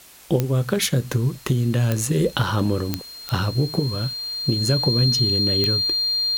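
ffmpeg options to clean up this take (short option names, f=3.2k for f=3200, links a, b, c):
-af "adeclick=t=4,bandreject=f=4.2k:w=30,afwtdn=0.005"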